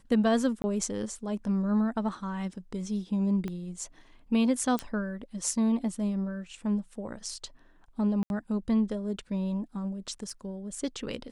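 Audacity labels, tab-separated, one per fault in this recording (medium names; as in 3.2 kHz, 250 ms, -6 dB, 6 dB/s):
0.620000	0.640000	dropout 20 ms
3.480000	3.480000	pop -23 dBFS
4.790000	4.790000	pop -16 dBFS
8.230000	8.300000	dropout 71 ms
10.230000	10.310000	clipped -29 dBFS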